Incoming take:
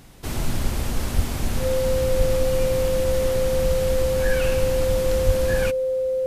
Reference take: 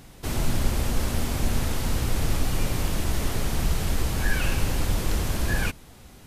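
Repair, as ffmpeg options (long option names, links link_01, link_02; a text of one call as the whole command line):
ffmpeg -i in.wav -filter_complex "[0:a]bandreject=frequency=520:width=30,asplit=3[link_01][link_02][link_03];[link_01]afade=type=out:start_time=1.15:duration=0.02[link_04];[link_02]highpass=frequency=140:width=0.5412,highpass=frequency=140:width=1.3066,afade=type=in:start_time=1.15:duration=0.02,afade=type=out:start_time=1.27:duration=0.02[link_05];[link_03]afade=type=in:start_time=1.27:duration=0.02[link_06];[link_04][link_05][link_06]amix=inputs=3:normalize=0,asplit=3[link_07][link_08][link_09];[link_07]afade=type=out:start_time=2.17:duration=0.02[link_10];[link_08]highpass=frequency=140:width=0.5412,highpass=frequency=140:width=1.3066,afade=type=in:start_time=2.17:duration=0.02,afade=type=out:start_time=2.29:duration=0.02[link_11];[link_09]afade=type=in:start_time=2.29:duration=0.02[link_12];[link_10][link_11][link_12]amix=inputs=3:normalize=0,asplit=3[link_13][link_14][link_15];[link_13]afade=type=out:start_time=5.25:duration=0.02[link_16];[link_14]highpass=frequency=140:width=0.5412,highpass=frequency=140:width=1.3066,afade=type=in:start_time=5.25:duration=0.02,afade=type=out:start_time=5.37:duration=0.02[link_17];[link_15]afade=type=in:start_time=5.37:duration=0.02[link_18];[link_16][link_17][link_18]amix=inputs=3:normalize=0" out.wav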